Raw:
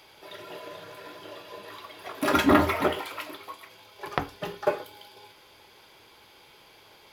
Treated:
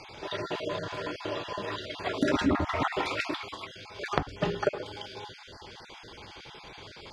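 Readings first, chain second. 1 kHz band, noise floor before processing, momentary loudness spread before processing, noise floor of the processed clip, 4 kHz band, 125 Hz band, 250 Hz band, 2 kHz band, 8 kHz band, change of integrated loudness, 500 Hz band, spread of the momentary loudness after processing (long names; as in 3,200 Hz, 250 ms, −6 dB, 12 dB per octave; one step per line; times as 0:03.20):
−3.0 dB, −55 dBFS, 22 LU, −49 dBFS, +1.0 dB, +1.0 dB, −3.0 dB, −1.5 dB, −4.0 dB, −5.5 dB, −2.0 dB, 18 LU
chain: time-frequency cells dropped at random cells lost 23%
low-pass filter 7,300 Hz 24 dB per octave
low-shelf EQ 230 Hz +9.5 dB
downward compressor 6 to 1, threshold −32 dBFS, peak gain reduction 19 dB
level +8 dB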